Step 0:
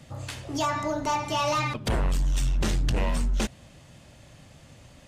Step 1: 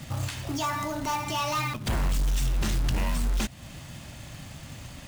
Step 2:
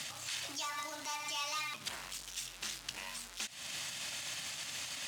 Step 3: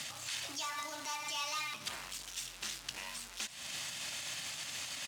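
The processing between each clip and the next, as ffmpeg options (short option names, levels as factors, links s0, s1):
-af "alimiter=level_in=2.11:limit=0.0631:level=0:latency=1:release=262,volume=0.473,equalizer=f=480:t=o:w=0.81:g=-8,acrusher=bits=3:mode=log:mix=0:aa=0.000001,volume=2.82"
-af "acompressor=threshold=0.02:ratio=6,alimiter=level_in=3.35:limit=0.0631:level=0:latency=1:release=30,volume=0.299,bandpass=f=5200:t=q:w=0.56:csg=0,volume=3.16"
-af "aecho=1:1:337:0.178"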